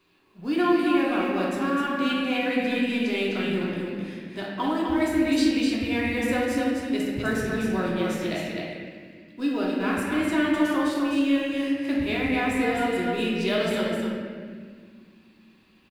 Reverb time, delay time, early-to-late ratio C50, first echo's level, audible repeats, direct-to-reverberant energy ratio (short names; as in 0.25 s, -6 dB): 1.8 s, 0.255 s, -2.0 dB, -4.0 dB, 1, -5.5 dB